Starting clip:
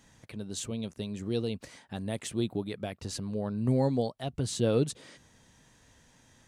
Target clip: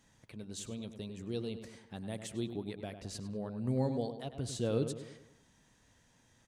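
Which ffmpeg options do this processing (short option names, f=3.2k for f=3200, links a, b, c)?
-filter_complex "[0:a]asplit=2[a][b];[b]adelay=100,lowpass=f=2.8k:p=1,volume=-9dB,asplit=2[c][d];[d]adelay=100,lowpass=f=2.8k:p=1,volume=0.49,asplit=2[e][f];[f]adelay=100,lowpass=f=2.8k:p=1,volume=0.49,asplit=2[g][h];[h]adelay=100,lowpass=f=2.8k:p=1,volume=0.49,asplit=2[i][j];[j]adelay=100,lowpass=f=2.8k:p=1,volume=0.49,asplit=2[k][l];[l]adelay=100,lowpass=f=2.8k:p=1,volume=0.49[m];[a][c][e][g][i][k][m]amix=inputs=7:normalize=0,volume=-7dB"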